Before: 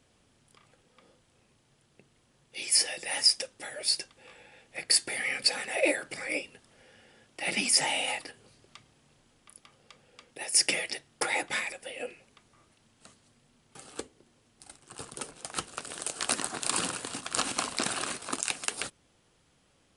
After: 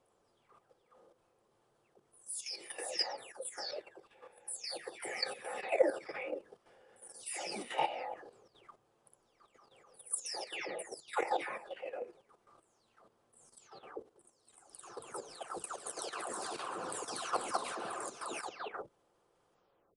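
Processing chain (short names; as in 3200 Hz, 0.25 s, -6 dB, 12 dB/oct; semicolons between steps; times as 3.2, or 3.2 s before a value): spectral delay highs early, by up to 0.421 s; band shelf 700 Hz +12.5 dB 2.4 oct; notch 1400 Hz, Q 30; level quantiser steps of 11 dB; gain -8 dB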